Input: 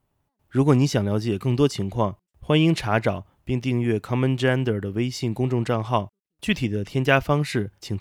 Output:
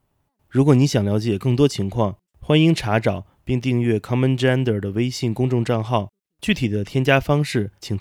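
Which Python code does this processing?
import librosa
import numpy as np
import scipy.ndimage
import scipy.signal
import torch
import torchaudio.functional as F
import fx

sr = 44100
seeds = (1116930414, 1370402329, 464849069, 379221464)

y = fx.dynamic_eq(x, sr, hz=1200.0, q=1.6, threshold_db=-39.0, ratio=4.0, max_db=-5)
y = F.gain(torch.from_numpy(y), 3.5).numpy()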